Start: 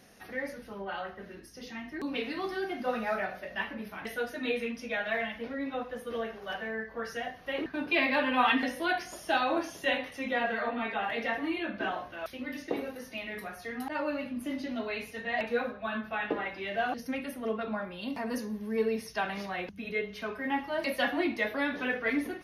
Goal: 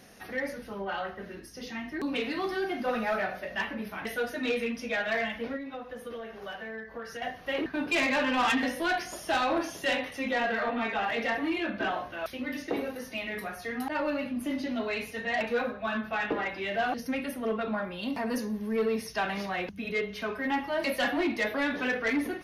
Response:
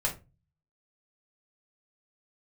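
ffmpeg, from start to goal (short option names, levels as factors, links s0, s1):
-filter_complex "[0:a]asoftclip=type=tanh:threshold=0.0531,asettb=1/sr,asplit=3[s0][s1][s2];[s0]atrim=end=5.564[s3];[s1]atrim=start=5.56:end=7.22,asetpts=PTS-STARTPTS,afade=t=in:d=0.004:c=qsin,afade=t=out:st=1.656:d=0.004:c=qsin,acompressor=threshold=0.00891:ratio=6[s4];[s2]atrim=start=7.216[s5];[s3][s4]acrossfade=d=0.004:c1=hsin:c2=qsin[s6];[s6][s5]acrossfade=d=0.004:c1=qsin:c2=hsin,volume=1.58"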